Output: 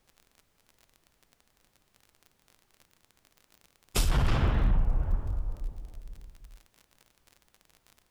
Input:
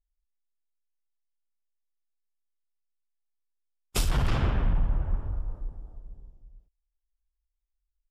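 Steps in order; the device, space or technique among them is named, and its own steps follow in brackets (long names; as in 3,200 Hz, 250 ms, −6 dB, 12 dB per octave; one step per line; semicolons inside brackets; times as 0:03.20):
warped LP (wow of a warped record 33 1/3 rpm, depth 250 cents; surface crackle 40 per second −40 dBFS; pink noise bed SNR 40 dB)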